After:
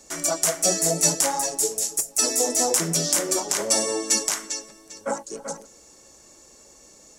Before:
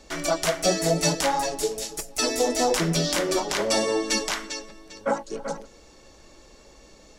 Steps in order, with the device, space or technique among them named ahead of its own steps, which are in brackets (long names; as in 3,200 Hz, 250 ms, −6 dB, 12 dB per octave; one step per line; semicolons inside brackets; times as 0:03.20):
budget condenser microphone (high-pass filter 110 Hz 6 dB per octave; high shelf with overshoot 5,300 Hz +11 dB, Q 1.5)
level −2.5 dB